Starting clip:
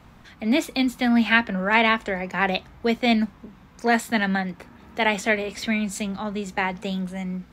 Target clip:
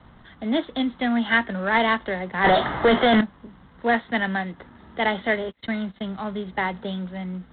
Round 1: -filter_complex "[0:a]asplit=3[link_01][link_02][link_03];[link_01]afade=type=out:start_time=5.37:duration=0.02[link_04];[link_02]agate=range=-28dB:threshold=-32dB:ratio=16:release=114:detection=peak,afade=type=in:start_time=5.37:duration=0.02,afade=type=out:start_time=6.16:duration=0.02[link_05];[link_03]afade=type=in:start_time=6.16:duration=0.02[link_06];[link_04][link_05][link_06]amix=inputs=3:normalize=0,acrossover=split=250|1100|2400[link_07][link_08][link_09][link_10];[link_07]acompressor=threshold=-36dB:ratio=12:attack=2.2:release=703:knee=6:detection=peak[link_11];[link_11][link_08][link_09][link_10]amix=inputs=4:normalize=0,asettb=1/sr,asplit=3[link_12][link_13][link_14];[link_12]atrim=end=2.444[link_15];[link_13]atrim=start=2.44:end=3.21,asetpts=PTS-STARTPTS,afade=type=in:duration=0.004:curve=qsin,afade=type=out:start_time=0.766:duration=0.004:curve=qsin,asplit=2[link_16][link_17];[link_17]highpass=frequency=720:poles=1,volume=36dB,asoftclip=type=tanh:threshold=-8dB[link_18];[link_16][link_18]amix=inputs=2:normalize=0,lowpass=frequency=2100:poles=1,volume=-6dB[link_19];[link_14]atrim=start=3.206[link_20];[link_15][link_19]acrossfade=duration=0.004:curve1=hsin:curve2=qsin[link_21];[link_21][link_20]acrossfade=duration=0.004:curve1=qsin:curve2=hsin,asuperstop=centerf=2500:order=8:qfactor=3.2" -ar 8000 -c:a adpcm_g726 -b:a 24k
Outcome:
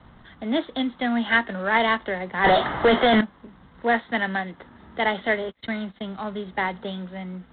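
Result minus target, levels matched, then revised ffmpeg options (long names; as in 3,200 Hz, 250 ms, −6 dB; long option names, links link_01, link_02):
downward compressor: peak gain reduction +6.5 dB
-filter_complex "[0:a]asplit=3[link_01][link_02][link_03];[link_01]afade=type=out:start_time=5.37:duration=0.02[link_04];[link_02]agate=range=-28dB:threshold=-32dB:ratio=16:release=114:detection=peak,afade=type=in:start_time=5.37:duration=0.02,afade=type=out:start_time=6.16:duration=0.02[link_05];[link_03]afade=type=in:start_time=6.16:duration=0.02[link_06];[link_04][link_05][link_06]amix=inputs=3:normalize=0,acrossover=split=250|1100|2400[link_07][link_08][link_09][link_10];[link_07]acompressor=threshold=-29dB:ratio=12:attack=2.2:release=703:knee=6:detection=peak[link_11];[link_11][link_08][link_09][link_10]amix=inputs=4:normalize=0,asettb=1/sr,asplit=3[link_12][link_13][link_14];[link_12]atrim=end=2.444[link_15];[link_13]atrim=start=2.44:end=3.21,asetpts=PTS-STARTPTS,afade=type=in:duration=0.004:curve=qsin,afade=type=out:start_time=0.766:duration=0.004:curve=qsin,asplit=2[link_16][link_17];[link_17]highpass=frequency=720:poles=1,volume=36dB,asoftclip=type=tanh:threshold=-8dB[link_18];[link_16][link_18]amix=inputs=2:normalize=0,lowpass=frequency=2100:poles=1,volume=-6dB[link_19];[link_14]atrim=start=3.206[link_20];[link_15][link_19]acrossfade=duration=0.004:curve1=hsin:curve2=qsin[link_21];[link_21][link_20]acrossfade=duration=0.004:curve1=qsin:curve2=hsin,asuperstop=centerf=2500:order=8:qfactor=3.2" -ar 8000 -c:a adpcm_g726 -b:a 24k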